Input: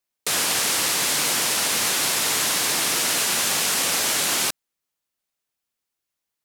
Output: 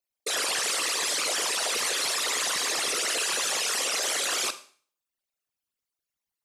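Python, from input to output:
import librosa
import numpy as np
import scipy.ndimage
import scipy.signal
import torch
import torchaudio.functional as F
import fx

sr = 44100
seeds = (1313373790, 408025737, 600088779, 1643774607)

y = fx.envelope_sharpen(x, sr, power=3.0)
y = fx.rev_schroeder(y, sr, rt60_s=0.45, comb_ms=32, drr_db=11.5)
y = F.gain(torch.from_numpy(y), -5.5).numpy()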